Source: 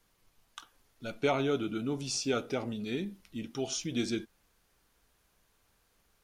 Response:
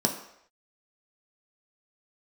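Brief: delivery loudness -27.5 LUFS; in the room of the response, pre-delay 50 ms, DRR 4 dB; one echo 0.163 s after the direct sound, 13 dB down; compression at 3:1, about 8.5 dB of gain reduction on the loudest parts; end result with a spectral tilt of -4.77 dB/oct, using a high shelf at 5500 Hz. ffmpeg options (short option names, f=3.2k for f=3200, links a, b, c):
-filter_complex "[0:a]highshelf=f=5.5k:g=-3,acompressor=threshold=-35dB:ratio=3,aecho=1:1:163:0.224,asplit=2[a][b];[1:a]atrim=start_sample=2205,adelay=50[c];[b][c]afir=irnorm=-1:irlink=0,volume=-14dB[d];[a][d]amix=inputs=2:normalize=0,volume=6.5dB"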